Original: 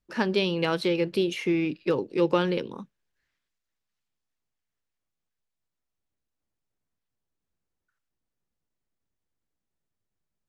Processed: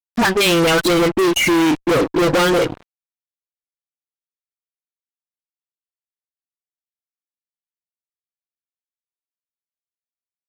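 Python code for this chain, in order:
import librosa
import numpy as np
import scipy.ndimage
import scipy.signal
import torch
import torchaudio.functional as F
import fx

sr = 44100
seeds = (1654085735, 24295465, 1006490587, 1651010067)

y = fx.dispersion(x, sr, late='highs', ms=49.0, hz=670.0)
y = fx.noise_reduce_blind(y, sr, reduce_db=15)
y = fx.fuzz(y, sr, gain_db=40.0, gate_db=-47.0)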